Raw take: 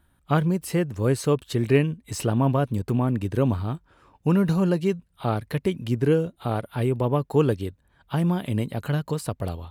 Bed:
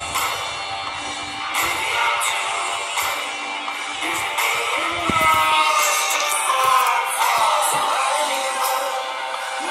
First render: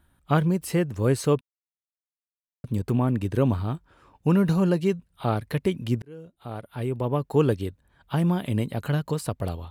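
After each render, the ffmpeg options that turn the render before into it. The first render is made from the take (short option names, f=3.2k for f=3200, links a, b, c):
-filter_complex "[0:a]asplit=4[a][b][c][d];[a]atrim=end=1.41,asetpts=PTS-STARTPTS,afade=t=out:st=1.406:d=0.004:c=hsin[e];[b]atrim=start=1.41:end=2.64,asetpts=PTS-STARTPTS,volume=0[f];[c]atrim=start=2.64:end=6.02,asetpts=PTS-STARTPTS,afade=t=in:d=0.004:c=hsin,afade=t=out:st=3.376:d=0.004:c=hsin[g];[d]atrim=start=6.02,asetpts=PTS-STARTPTS,afade=t=in:d=1.48[h];[e][f][g][h]concat=n=4:v=0:a=1"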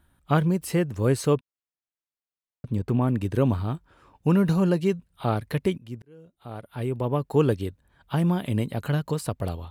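-filter_complex "[0:a]asettb=1/sr,asplit=3[a][b][c];[a]atrim=end=1.364[d];[b]atrim=start=1.36:end=3.02,asetpts=PTS-STARTPTS,afade=t=in:d=0.004:c=qsin,afade=t=out:st=1.656:d=0.004:c=qsin,highshelf=f=5k:g=-10[e];[c]atrim=start=3.016[f];[d][e]acrossfade=d=0.004:c1=hsin:c2=qsin[g];[g][f]acrossfade=d=0.004:c1=qsin:c2=hsin,asplit=2[h][i];[h]atrim=end=5.78,asetpts=PTS-STARTPTS,afade=t=out:st=5.776:d=0.004:c=hsin:silence=0.133352[j];[i]atrim=start=5.78,asetpts=PTS-STARTPTS,afade=t=in:d=1.03:silence=0.133352[k];[j][k]concat=n=2:v=0:a=1"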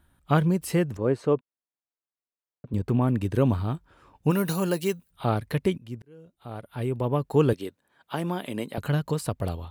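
-filter_complex "[0:a]asettb=1/sr,asplit=3[a][b][c];[a]atrim=end=0.974[d];[b]atrim=start=0.97:end=2.74,asetpts=PTS-STARTPTS,afade=t=in:d=0.004:c=qsin,afade=t=out:st=1.766:d=0.004:c=qsin,bandpass=f=520:t=q:w=0.52[e];[c]atrim=start=2.736[f];[d][e]acrossfade=d=0.004:c1=hsin:c2=qsin[g];[g][f]acrossfade=d=0.004:c1=qsin:c2=hsin,asplit=3[h][i][j];[h]afade=t=out:st=4.3:d=0.02[k];[i]aemphasis=mode=production:type=bsi,afade=t=in:st=4.3:d=0.02,afade=t=out:st=5.1:d=0.02[l];[j]afade=t=in:st=5.1:d=0.02[m];[k][l][m]amix=inputs=3:normalize=0,asettb=1/sr,asplit=3[n][o][p];[n]atrim=end=7.534[q];[o]atrim=start=7.53:end=8.78,asetpts=PTS-STARTPTS,afade=t=in:d=0.004:c=qsin,afade=t=out:st=1.246:d=0.004:c=qsin,highpass=280[r];[p]atrim=start=8.776[s];[q][r]acrossfade=d=0.004:c1=hsin:c2=qsin[t];[t][s]acrossfade=d=0.004:c1=qsin:c2=hsin"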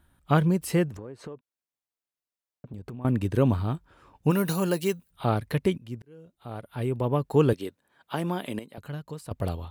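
-filter_complex "[0:a]asettb=1/sr,asplit=3[a][b][c];[a]atrim=end=0.884[d];[b]atrim=start=0.88:end=3.05,asetpts=PTS-STARTPTS,afade=t=in:d=0.004:c=qsin,afade=t=out:st=2.166:d=0.004:c=qsin,acompressor=threshold=-35dB:ratio=16:attack=3.2:release=140:knee=1:detection=peak[e];[c]atrim=start=3.046[f];[d][e]acrossfade=d=0.004:c1=hsin:c2=qsin[g];[g][f]acrossfade=d=0.004:c1=qsin:c2=hsin,asplit=3[h][i][j];[h]atrim=end=8.592[k];[i]atrim=start=8.588:end=9.312,asetpts=PTS-STARTPTS,volume=-11dB[l];[j]atrim=start=9.308[m];[k][l]acrossfade=d=0.004:c1=hsin:c2=hsin[n];[n][m]acrossfade=d=0.004:c1=hsin:c2=hsin"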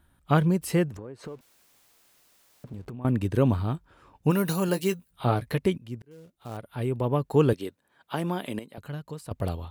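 -filter_complex "[0:a]asettb=1/sr,asplit=3[a][b][c];[a]atrim=end=1.234[d];[b]atrim=start=1.23:end=2.89,asetpts=PTS-STARTPTS,afade=t=in:d=0.004:c=qsin,afade=t=out:st=1.656:d=0.004:c=qsin,aeval=exprs='val(0)+0.5*0.00224*sgn(val(0))':c=same[e];[c]atrim=start=2.886[f];[d][e]acrossfade=d=0.004:c1=hsin:c2=qsin[g];[g][f]acrossfade=d=0.004:c1=qsin:c2=hsin,asettb=1/sr,asplit=3[h][i][j];[h]atrim=end=4.674[k];[i]atrim=start=4.67:end=5.58,asetpts=PTS-STARTPTS,afade=t=in:d=0.004:c=qsin,afade=t=out:st=0.906:d=0.004:c=qsin,asplit=2[l][m];[m]adelay=16,volume=-8.5dB[n];[l][n]amix=inputs=2:normalize=0,atrim=end_sample=40131[o];[j]atrim=start=5.576[p];[k][o]acrossfade=d=0.004:c1=hsin:c2=qsin[q];[q][p]acrossfade=d=0.004:c1=qsin:c2=hsin,asettb=1/sr,asplit=3[r][s][t];[r]atrim=end=6.114[u];[s]atrim=start=6.11:end=6.57,asetpts=PTS-STARTPTS,afade=t=in:d=0.004:c=qsin,afade=t=out:st=0.456:d=0.004:c=qsin,acrusher=bits=4:mode=log:mix=0:aa=0.000001[v];[t]atrim=start=6.566[w];[u][v]acrossfade=d=0.004:c1=hsin:c2=qsin[x];[x][w]acrossfade=d=0.004:c1=qsin:c2=hsin"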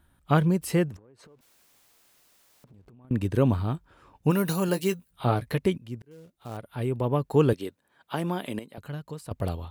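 -filter_complex "[0:a]asettb=1/sr,asplit=3[a][b][c];[a]atrim=end=0.964[d];[b]atrim=start=0.96:end=3.11,asetpts=PTS-STARTPTS,afade=t=in:d=0.004:c=qsin,afade=t=out:st=2.146:d=0.004:c=qsin,acompressor=threshold=-50dB:ratio=10:attack=3.2:release=140:knee=1:detection=peak[e];[c]atrim=start=3.106[f];[d][e]acrossfade=d=0.004:c1=hsin:c2=qsin[g];[g][f]acrossfade=d=0.004:c1=qsin:c2=hsin"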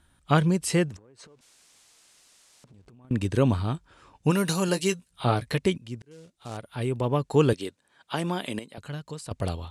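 -af "lowpass=f=9.3k:w=0.5412,lowpass=f=9.3k:w=1.3066,highshelf=f=2.6k:g=9.5"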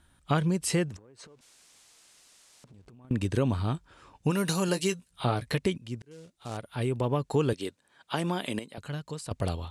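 -af "acompressor=threshold=-24dB:ratio=2.5"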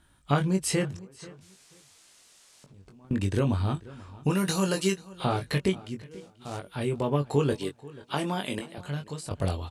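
-filter_complex "[0:a]asplit=2[a][b];[b]adelay=21,volume=-5dB[c];[a][c]amix=inputs=2:normalize=0,asplit=2[d][e];[e]adelay=486,lowpass=f=4k:p=1,volume=-20dB,asplit=2[f][g];[g]adelay=486,lowpass=f=4k:p=1,volume=0.21[h];[d][f][h]amix=inputs=3:normalize=0"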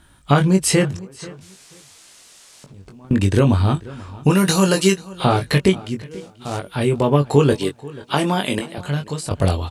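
-af "volume=10.5dB,alimiter=limit=-2dB:level=0:latency=1"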